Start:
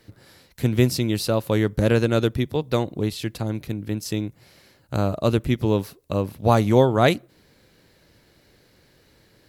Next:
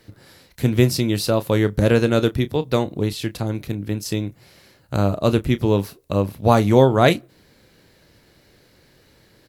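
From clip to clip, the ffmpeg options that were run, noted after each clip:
-filter_complex "[0:a]asplit=2[s0][s1];[s1]adelay=30,volume=0.224[s2];[s0][s2]amix=inputs=2:normalize=0,volume=1.33"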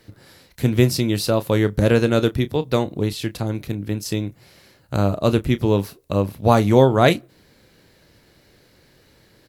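-af anull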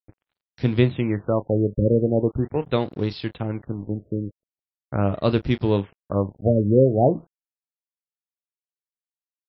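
-af "bandreject=f=82.6:t=h:w=4,bandreject=f=165.2:t=h:w=4,aeval=exprs='sgn(val(0))*max(abs(val(0))-0.00944,0)':c=same,afftfilt=real='re*lt(b*sr/1024,590*pow(5800/590,0.5+0.5*sin(2*PI*0.41*pts/sr)))':imag='im*lt(b*sr/1024,590*pow(5800/590,0.5+0.5*sin(2*PI*0.41*pts/sr)))':win_size=1024:overlap=0.75,volume=0.794"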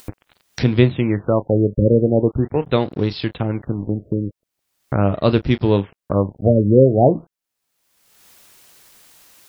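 -af "acompressor=mode=upward:threshold=0.0891:ratio=2.5,volume=1.68"

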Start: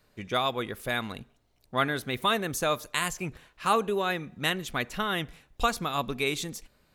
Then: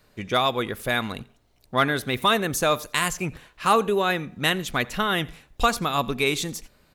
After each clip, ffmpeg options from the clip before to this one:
-filter_complex "[0:a]asplit=2[s0][s1];[s1]aeval=exprs='0.355*sin(PI/2*1.58*val(0)/0.355)':c=same,volume=0.376[s2];[s0][s2]amix=inputs=2:normalize=0,aecho=1:1:87:0.0668"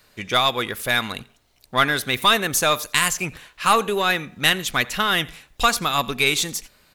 -filter_complex "[0:a]tiltshelf=f=970:g=-5,asplit=2[s0][s1];[s1]aeval=exprs='clip(val(0),-1,0.0447)':c=same,volume=0.422[s2];[s0][s2]amix=inputs=2:normalize=0"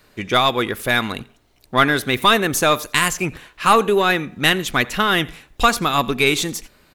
-af "firequalizer=gain_entry='entry(170,0);entry(330,4);entry(520,-1);entry(4500,-6)':delay=0.05:min_phase=1,volume=1.78"

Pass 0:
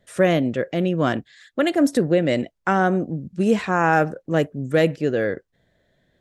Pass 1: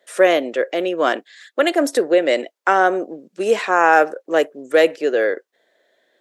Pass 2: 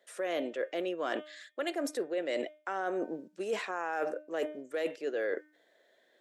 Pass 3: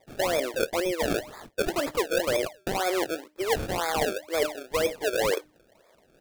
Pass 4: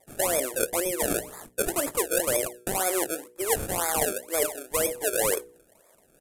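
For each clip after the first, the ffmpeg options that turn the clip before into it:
-af "highpass=f=370:w=0.5412,highpass=f=370:w=1.3066,volume=1.88"
-af "bandreject=f=303.8:t=h:w=4,bandreject=f=607.6:t=h:w=4,bandreject=f=911.4:t=h:w=4,bandreject=f=1215.2:t=h:w=4,bandreject=f=1519:t=h:w=4,bandreject=f=1822.8:t=h:w=4,bandreject=f=2126.6:t=h:w=4,bandreject=f=2430.4:t=h:w=4,bandreject=f=2734.2:t=h:w=4,bandreject=f=3038:t=h:w=4,bandreject=f=3341.8:t=h:w=4,bandreject=f=3645.6:t=h:w=4,alimiter=limit=0.398:level=0:latency=1:release=102,areverse,acompressor=threshold=0.0501:ratio=6,areverse,volume=0.562"
-af "highpass=f=340:w=0.5412,highpass=f=340:w=1.3066,equalizer=f=440:t=o:w=2.2:g=3,acrusher=samples=30:mix=1:aa=0.000001:lfo=1:lforange=30:lforate=2,volume=1.88"
-af "highshelf=f=6500:t=q:w=1.5:g=12,bandreject=f=60.9:t=h:w=4,bandreject=f=121.8:t=h:w=4,bandreject=f=182.7:t=h:w=4,bandreject=f=243.6:t=h:w=4,bandreject=f=304.5:t=h:w=4,bandreject=f=365.4:t=h:w=4,bandreject=f=426.3:t=h:w=4,bandreject=f=487.2:t=h:w=4,aresample=32000,aresample=44100,volume=0.891"

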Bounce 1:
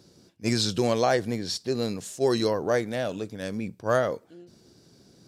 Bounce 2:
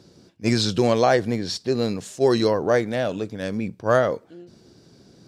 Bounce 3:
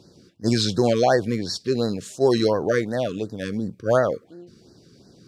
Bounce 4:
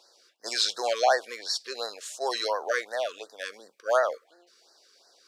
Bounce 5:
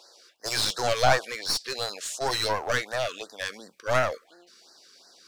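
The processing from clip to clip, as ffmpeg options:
-af "highshelf=f=7500:g=-11,volume=1.78"
-af "afftfilt=real='re*(1-between(b*sr/1024,710*pow(2800/710,0.5+0.5*sin(2*PI*2.8*pts/sr))/1.41,710*pow(2800/710,0.5+0.5*sin(2*PI*2.8*pts/sr))*1.41))':imag='im*(1-between(b*sr/1024,710*pow(2800/710,0.5+0.5*sin(2*PI*2.8*pts/sr))/1.41,710*pow(2800/710,0.5+0.5*sin(2*PI*2.8*pts/sr))*1.41))':win_size=1024:overlap=0.75"
-af "highpass=f=650:w=0.5412,highpass=f=650:w=1.3066"
-af "deesser=0.55,asubboost=boost=10:cutoff=160,aeval=exprs='clip(val(0),-1,0.0178)':c=same,volume=2"

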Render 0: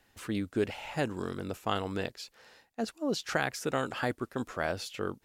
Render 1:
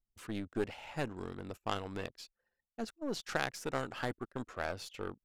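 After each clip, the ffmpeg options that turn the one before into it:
-af "anlmdn=0.01,aeval=exprs='0.237*(cos(1*acos(clip(val(0)/0.237,-1,1)))-cos(1*PI/2))+0.0376*(cos(3*acos(clip(val(0)/0.237,-1,1)))-cos(3*PI/2))+0.00944*(cos(8*acos(clip(val(0)/0.237,-1,1)))-cos(8*PI/2))':c=same,volume=0.891"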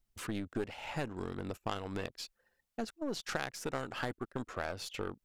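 -af "acompressor=threshold=0.00501:ratio=2.5,volume=2.66"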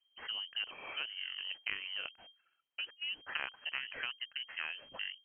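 -af "aeval=exprs='if(lt(val(0),0),0.447*val(0),val(0))':c=same,lowpass=f=2700:t=q:w=0.5098,lowpass=f=2700:t=q:w=0.6013,lowpass=f=2700:t=q:w=0.9,lowpass=f=2700:t=q:w=2.563,afreqshift=-3200,volume=1.12"

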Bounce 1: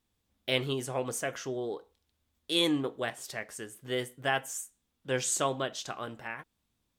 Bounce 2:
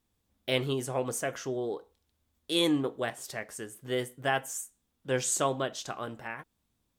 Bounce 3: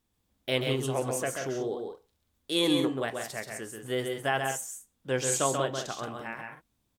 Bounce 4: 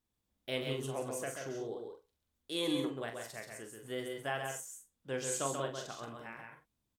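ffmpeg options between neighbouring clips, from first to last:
-af "equalizer=f=3000:t=o:w=2.1:g=-3.5,volume=1.26"
-af "aecho=1:1:134|179:0.562|0.335"
-filter_complex "[0:a]asplit=2[s0][s1];[s1]adelay=43,volume=0.398[s2];[s0][s2]amix=inputs=2:normalize=0,volume=0.355"

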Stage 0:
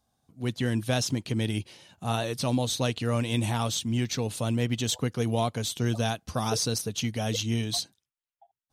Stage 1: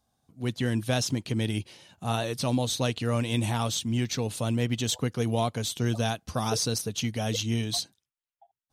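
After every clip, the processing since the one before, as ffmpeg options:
-af anull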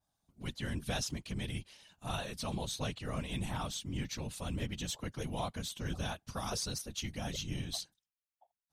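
-af "equalizer=f=320:t=o:w=2.1:g=-9.5,afftfilt=real='hypot(re,im)*cos(2*PI*random(0))':imag='hypot(re,im)*sin(2*PI*random(1))':win_size=512:overlap=0.75,adynamicequalizer=threshold=0.00316:dfrequency=2300:dqfactor=0.7:tfrequency=2300:tqfactor=0.7:attack=5:release=100:ratio=0.375:range=2.5:mode=cutabove:tftype=highshelf"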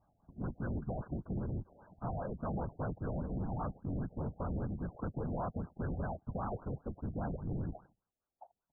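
-af "aresample=16000,asoftclip=type=hard:threshold=0.0126,aresample=44100,acompressor=threshold=0.00316:ratio=3,afftfilt=real='re*lt(b*sr/1024,760*pow(1700/760,0.5+0.5*sin(2*PI*5*pts/sr)))':imag='im*lt(b*sr/1024,760*pow(1700/760,0.5+0.5*sin(2*PI*5*pts/sr)))':win_size=1024:overlap=0.75,volume=4.22"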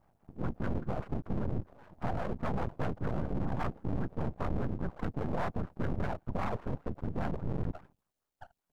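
-af "aeval=exprs='max(val(0),0)':c=same,volume=2.51"

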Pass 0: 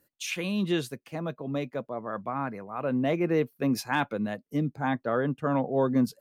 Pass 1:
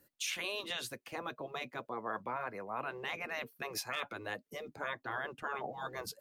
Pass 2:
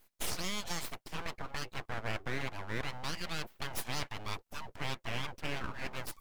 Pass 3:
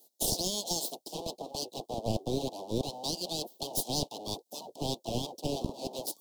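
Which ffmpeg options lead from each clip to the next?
-filter_complex "[0:a]afftfilt=real='re*lt(hypot(re,im),0.112)':imag='im*lt(hypot(re,im),0.112)':win_size=1024:overlap=0.75,acrossover=split=390|2400[s0][s1][s2];[s0]acompressor=threshold=0.00224:ratio=6[s3];[s3][s1][s2]amix=inputs=3:normalize=0,alimiter=level_in=1.41:limit=0.0631:level=0:latency=1:release=191,volume=0.708,volume=1.12"
-af "aeval=exprs='abs(val(0))':c=same,volume=1.58"
-filter_complex "[0:a]acrossover=split=240|540|4200[s0][s1][s2][s3];[s0]acrusher=bits=4:mix=0:aa=0.5[s4];[s4][s1][s2][s3]amix=inputs=4:normalize=0,asuperstop=centerf=1700:order=8:qfactor=0.6,volume=2.82"

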